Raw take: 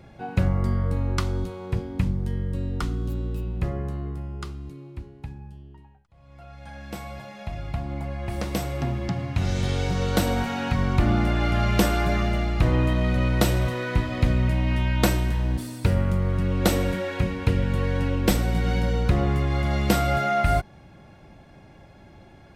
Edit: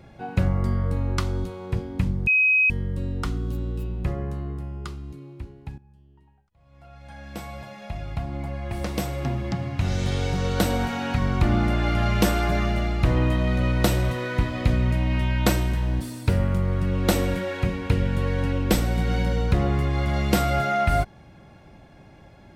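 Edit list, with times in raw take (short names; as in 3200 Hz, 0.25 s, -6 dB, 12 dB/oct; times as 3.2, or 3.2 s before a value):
2.27 add tone 2530 Hz -15.5 dBFS 0.43 s
5.35–6.98 fade in, from -15.5 dB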